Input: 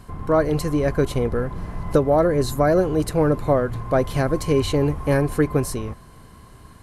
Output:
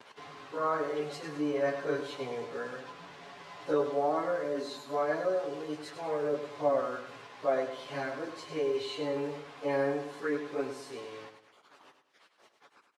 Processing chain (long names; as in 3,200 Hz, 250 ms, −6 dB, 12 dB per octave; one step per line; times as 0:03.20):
comb filter 7.1 ms, depth 70%
speech leveller within 4 dB 2 s
bit reduction 6 bits
time stretch by phase vocoder 1.9×
band-pass filter 440–4,300 Hz
repeating echo 101 ms, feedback 39%, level −9 dB
level −8.5 dB